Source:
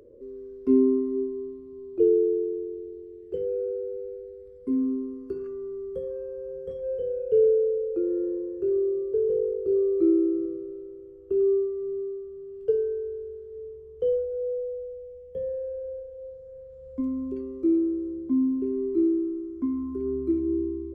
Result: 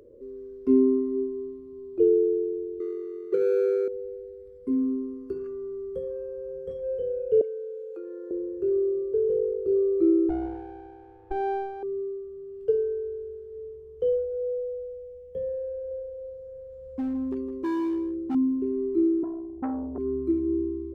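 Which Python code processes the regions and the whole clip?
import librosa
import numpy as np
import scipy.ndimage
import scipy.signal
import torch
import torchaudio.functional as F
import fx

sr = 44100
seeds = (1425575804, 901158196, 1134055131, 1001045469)

y = fx.chain(x, sr, fx.median_filter(points=41),
    fx.highpass(hz=180.0, slope=12),
    fx.peak_eq(hz=390.0, db=10.5, octaves=0.63), at=(2.8, 3.88))
y = fx.chain(y, sr, fx.highpass(hz=900.0, slope=12),
    fx.band_squash(depth_pct=70), at=(7.41, 8.31))
y = fx.chain(y, sr, fx.lower_of_two(delay_ms=3.5),
    fx.lowpass(hz=1200.0, slope=6), at=(10.29, 11.83))
y = fx.chain(y, sr, fx.clip_hard(threshold_db=-25.5),
    fx.echo_single(ms=160, db=-11.0), at=(15.75, 18.35))
y = fx.chain(y, sr, fx.cheby_ripple(hz=750.0, ripple_db=3),
    fx.peak_eq(hz=63.0, db=6.5, octaves=2.6),
    fx.transformer_sat(knee_hz=590.0), at=(19.23, 19.98))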